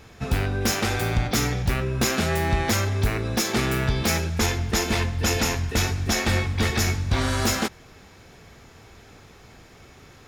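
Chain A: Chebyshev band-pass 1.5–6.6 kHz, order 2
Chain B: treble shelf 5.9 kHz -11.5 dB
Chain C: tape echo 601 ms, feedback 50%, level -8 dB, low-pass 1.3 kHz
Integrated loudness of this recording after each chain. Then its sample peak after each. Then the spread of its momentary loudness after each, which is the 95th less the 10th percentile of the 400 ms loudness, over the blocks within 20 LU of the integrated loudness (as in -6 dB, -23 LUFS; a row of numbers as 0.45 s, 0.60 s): -28.5 LUFS, -25.0 LUFS, -23.5 LUFS; -13.0 dBFS, -12.0 dBFS, -10.5 dBFS; 6 LU, 2 LU, 13 LU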